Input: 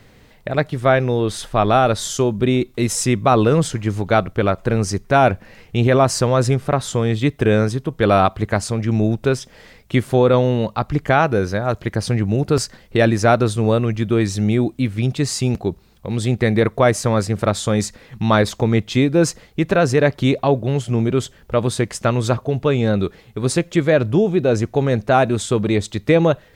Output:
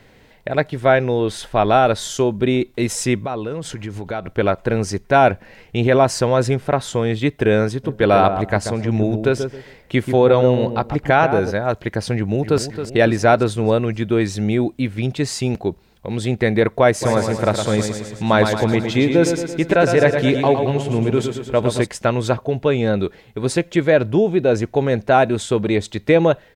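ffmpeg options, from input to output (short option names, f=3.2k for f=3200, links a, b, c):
-filter_complex "[0:a]asettb=1/sr,asplit=3[a][b][c];[a]atrim=end=3.214[d];[b]atrim=start=3.21:end=4.25,asetpts=PTS-STARTPTS,afade=t=in:d=0.004:c=qsin,afade=t=out:st=1.036:d=0.004:c=qsin,acompressor=threshold=-22dB:ratio=5:attack=3.2:release=140:knee=1:detection=peak[e];[c]atrim=start=4.246[f];[d][e]acrossfade=d=0.004:c1=hsin:c2=qsin[g];[g][f]acrossfade=d=0.004:c1=qsin:c2=hsin,asplit=3[h][i][j];[h]afade=t=out:st=7.83:d=0.02[k];[i]asplit=2[l][m];[m]adelay=135,lowpass=f=850:p=1,volume=-6dB,asplit=2[n][o];[o]adelay=135,lowpass=f=850:p=1,volume=0.27,asplit=2[p][q];[q]adelay=135,lowpass=f=850:p=1,volume=0.27[r];[l][n][p][r]amix=inputs=4:normalize=0,afade=t=in:st=7.83:d=0.02,afade=t=out:st=11.5:d=0.02[s];[j]afade=t=in:st=11.5:d=0.02[t];[k][s][t]amix=inputs=3:normalize=0,asplit=2[u][v];[v]afade=t=in:st=12.15:d=0.01,afade=t=out:st=12.62:d=0.01,aecho=0:1:270|540|810|1080|1350|1620:0.316228|0.173925|0.0956589|0.0526124|0.0289368|0.0159152[w];[u][w]amix=inputs=2:normalize=0,asplit=3[x][y][z];[x]afade=t=out:st=17.01:d=0.02[aa];[y]aecho=1:1:112|224|336|448|560|672|784:0.473|0.265|0.148|0.0831|0.0465|0.0261|0.0146,afade=t=in:st=17.01:d=0.02,afade=t=out:st=21.85:d=0.02[ab];[z]afade=t=in:st=21.85:d=0.02[ac];[aa][ab][ac]amix=inputs=3:normalize=0,bass=f=250:g=-5,treble=f=4k:g=-5,bandreject=f=1.2k:w=7.8,volume=1.5dB"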